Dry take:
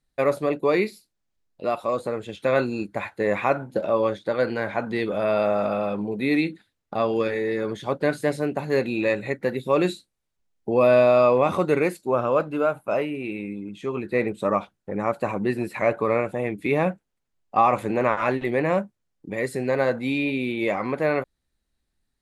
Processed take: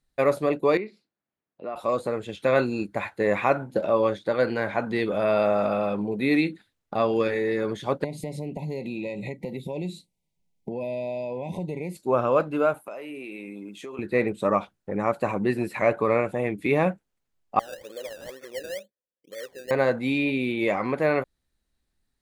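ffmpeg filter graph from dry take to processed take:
-filter_complex "[0:a]asettb=1/sr,asplit=3[a][b][c];[a]atrim=end=0.774[d];[b]atrim=start=0.77:end=1.76,asetpts=PTS-STARTPTS,afade=t=in:d=0.004:c=qsin,afade=t=out:st=0.986:d=0.004:c=qsin,acompressor=threshold=-44dB:ratio=1.5:attack=3.2:release=140:knee=1:detection=peak,highpass=160,lowpass=2.2k[e];[c]atrim=start=1.756[f];[d][e]acrossfade=d=0.004:c1=hsin:c2=qsin[g];[g][f]acrossfade=d=0.004:c1=qsin:c2=hsin,asettb=1/sr,asplit=3[h][i][j];[h]atrim=end=8.044[k];[i]atrim=start=8.04:end=11.97,asetpts=PTS-STARTPTS,afade=t=in:d=0.004:c=qsin,afade=t=out:st=3.926:d=0.004:c=qsin,equalizer=f=170:w=2.7:g=13.5,acompressor=threshold=-29dB:ratio=5:attack=3.2:release=140:knee=1:detection=peak,asuperstop=centerf=1400:order=20:qfactor=1.5[l];[j]atrim=start=11.966[m];[k][l]acrossfade=d=0.004:c1=hsin:c2=qsin[n];[n][m]acrossfade=d=0.004:c1=qsin:c2=hsin,asettb=1/sr,asplit=3[o][p][q];[o]atrim=end=12.744[r];[p]atrim=start=12.74:end=13.99,asetpts=PTS-STARTPTS,afade=t=in:d=0.004:c=qsin,afade=t=out:st=1.246:d=0.004:c=qsin,highpass=270,highshelf=f=7.3k:g=11.5,acompressor=threshold=-33dB:ratio=16:attack=3.2:release=140:knee=1:detection=peak[s];[q]atrim=start=13.986[t];[r][s]acrossfade=d=0.004:c1=hsin:c2=qsin[u];[u][t]acrossfade=d=0.004:c1=qsin:c2=hsin,asettb=1/sr,asplit=3[v][w][x];[v]atrim=end=17.594[y];[w]atrim=start=17.59:end=19.71,asetpts=PTS-STARTPTS,afade=t=in:d=0.004:c=qsin,afade=t=out:st=2.116:d=0.004:c=qsin,acompressor=threshold=-27dB:ratio=2.5:attack=3.2:release=140:knee=1:detection=peak,asplit=3[z][aa][ab];[z]bandpass=f=530:t=q:w=8,volume=0dB[ac];[aa]bandpass=f=1.84k:t=q:w=8,volume=-6dB[ad];[ab]bandpass=f=2.48k:t=q:w=8,volume=-9dB[ae];[ac][ad][ae]amix=inputs=3:normalize=0,acrusher=samples=16:mix=1:aa=0.000001:lfo=1:lforange=9.6:lforate=2.1[af];[x]atrim=start=19.706[ag];[y][af]acrossfade=d=0.004:c1=hsin:c2=qsin[ah];[ah][ag]acrossfade=d=0.004:c1=qsin:c2=hsin"

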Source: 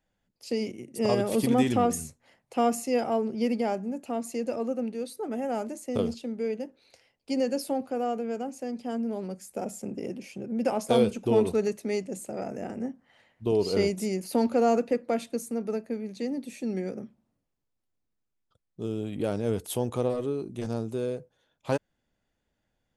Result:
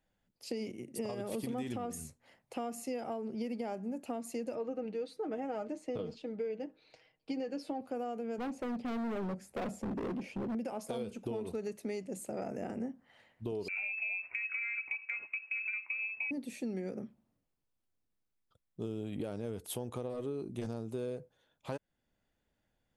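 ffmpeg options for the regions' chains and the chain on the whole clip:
-filter_complex "[0:a]asettb=1/sr,asplit=3[a][b][c];[a]atrim=end=4.554[d];[b]atrim=start=4.55:end=7.81,asetpts=PTS-STARTPTS,afade=t=in:d=0.004:c=qsin,afade=t=out:st=3.256:d=0.004:c=qsin,lowpass=4.3k,aecho=1:1:6.4:0.58,atrim=end_sample=143766[e];[c]atrim=start=7.806[f];[d][e]acrossfade=d=0.004:c1=hsin:c2=qsin[g];[g][f]acrossfade=d=0.004:c1=qsin:c2=hsin,asettb=1/sr,asplit=3[h][i][j];[h]atrim=end=8.384[k];[i]atrim=start=8.38:end=10.55,asetpts=PTS-STARTPTS,afade=t=in:d=0.004:c=qsin,afade=t=out:st=2.166:d=0.004:c=qsin,lowpass=f=1.3k:p=1,acontrast=73,volume=31dB,asoftclip=hard,volume=-31dB[l];[j]atrim=start=10.546[m];[k][l]acrossfade=d=0.004:c1=hsin:c2=qsin[n];[n][m]acrossfade=d=0.004:c1=qsin:c2=hsin,asettb=1/sr,asplit=3[o][p][q];[o]atrim=end=13.684[r];[p]atrim=start=13.68:end=16.31,asetpts=PTS-STARTPTS,afade=t=in:d=0.004:c=qsin,afade=t=out:st=2.626:d=0.004:c=qsin,lowpass=f=2.4k:t=q:w=0.5098,lowpass=f=2.4k:t=q:w=0.6013,lowpass=f=2.4k:t=q:w=0.9,lowpass=f=2.4k:t=q:w=2.563,afreqshift=-2800,acompressor=threshold=-32dB:ratio=3:attack=3.2:release=140:knee=1:detection=peak,tiltshelf=f=890:g=-5.5[s];[q]atrim=start=16.306[t];[r][s]acrossfade=d=0.004:c1=hsin:c2=qsin[u];[u][t]acrossfade=d=0.004:c1=qsin:c2=hsin,equalizer=f=6.3k:t=o:w=0.77:g=-2.5,alimiter=limit=-21.5dB:level=0:latency=1:release=460,acompressor=threshold=-32dB:ratio=6,volume=-2dB"

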